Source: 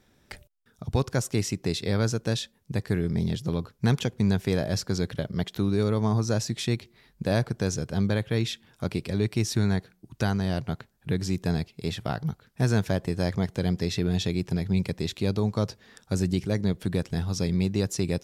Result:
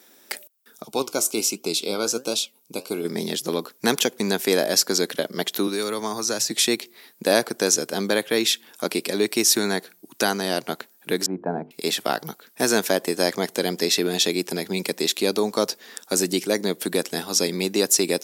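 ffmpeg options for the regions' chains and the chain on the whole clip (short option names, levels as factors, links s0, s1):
-filter_complex "[0:a]asettb=1/sr,asplit=3[s0][s1][s2];[s0]atrim=end=0.854[s3];[s1]atrim=start=0.85:end=3.05,asetpts=PTS-STARTPTS,afade=t=in:d=0.004:c=qsin,afade=t=out:st=2.196:d=0.004:c=qsin,asuperstop=centerf=1800:order=8:qfactor=2.8,flanger=delay=3.8:depth=8.3:regen=74:speed=1.3:shape=triangular[s4];[s2]atrim=start=3.046[s5];[s3][s4]acrossfade=d=0.004:c1=hsin:c2=qsin[s6];[s6][s5]acrossfade=d=0.004:c1=qsin:c2=hsin,asettb=1/sr,asplit=3[s7][s8][s9];[s7]atrim=end=5.674[s10];[s8]atrim=start=5.67:end=6.51,asetpts=PTS-STARTPTS,afade=t=in:d=0.004:c=qsin,afade=t=out:st=0.836:d=0.004:c=qsin,acrossover=split=280|980|5900[s11][s12][s13][s14];[s11]acompressor=threshold=0.02:ratio=3[s15];[s12]acompressor=threshold=0.0126:ratio=3[s16];[s13]acompressor=threshold=0.0112:ratio=3[s17];[s14]acompressor=threshold=0.00562:ratio=3[s18];[s15][s16][s17][s18]amix=inputs=4:normalize=0,equalizer=f=130:t=o:w=0.34:g=14[s19];[s9]atrim=start=6.506[s20];[s10][s19]acrossfade=d=0.004:c1=hsin:c2=qsin[s21];[s21][s20]acrossfade=d=0.004:c1=qsin:c2=hsin,asettb=1/sr,asplit=3[s22][s23][s24];[s22]atrim=end=11.264[s25];[s23]atrim=start=11.26:end=11.71,asetpts=PTS-STARTPTS,afade=t=in:d=0.004:c=qsin,afade=t=out:st=0.446:d=0.004:c=qsin,lowpass=f=1200:w=0.5412,lowpass=f=1200:w=1.3066,bandreject=f=50:t=h:w=6,bandreject=f=100:t=h:w=6,bandreject=f=150:t=h:w=6,bandreject=f=200:t=h:w=6,bandreject=f=250:t=h:w=6,bandreject=f=300:t=h:w=6,bandreject=f=350:t=h:w=6,bandreject=f=400:t=h:w=6,bandreject=f=450:t=h:w=6,aecho=1:1:1.3:0.37,atrim=end_sample=19845[s26];[s24]atrim=start=11.706[s27];[s25][s26]acrossfade=d=0.004:c1=hsin:c2=qsin[s28];[s28][s27]acrossfade=d=0.004:c1=qsin:c2=hsin,highpass=f=270:w=0.5412,highpass=f=270:w=1.3066,aemphasis=mode=production:type=50fm,volume=2.66"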